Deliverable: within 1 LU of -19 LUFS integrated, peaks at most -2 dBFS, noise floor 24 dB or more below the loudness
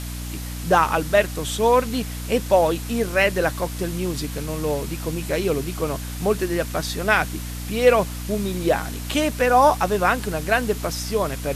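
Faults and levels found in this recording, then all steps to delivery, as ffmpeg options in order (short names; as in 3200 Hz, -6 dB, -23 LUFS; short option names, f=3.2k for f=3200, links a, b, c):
hum 60 Hz; harmonics up to 300 Hz; hum level -29 dBFS; noise floor -31 dBFS; noise floor target -46 dBFS; loudness -22.0 LUFS; peak -3.5 dBFS; loudness target -19.0 LUFS
-> -af "bandreject=f=60:t=h:w=6,bandreject=f=120:t=h:w=6,bandreject=f=180:t=h:w=6,bandreject=f=240:t=h:w=6,bandreject=f=300:t=h:w=6"
-af "afftdn=nr=15:nf=-31"
-af "volume=3dB,alimiter=limit=-2dB:level=0:latency=1"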